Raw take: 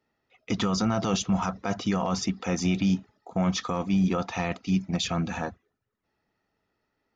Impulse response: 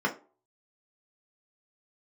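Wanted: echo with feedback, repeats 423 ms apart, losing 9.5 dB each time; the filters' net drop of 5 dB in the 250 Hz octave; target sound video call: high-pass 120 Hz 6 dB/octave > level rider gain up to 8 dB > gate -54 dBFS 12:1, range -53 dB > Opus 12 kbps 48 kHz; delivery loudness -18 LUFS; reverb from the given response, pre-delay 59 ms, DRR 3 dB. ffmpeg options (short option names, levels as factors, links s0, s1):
-filter_complex "[0:a]equalizer=f=250:t=o:g=-5.5,aecho=1:1:423|846|1269|1692:0.335|0.111|0.0365|0.012,asplit=2[s0][s1];[1:a]atrim=start_sample=2205,adelay=59[s2];[s1][s2]afir=irnorm=-1:irlink=0,volume=0.2[s3];[s0][s3]amix=inputs=2:normalize=0,highpass=f=120:p=1,dynaudnorm=m=2.51,agate=range=0.00224:threshold=0.002:ratio=12,volume=3.35" -ar 48000 -c:a libopus -b:a 12k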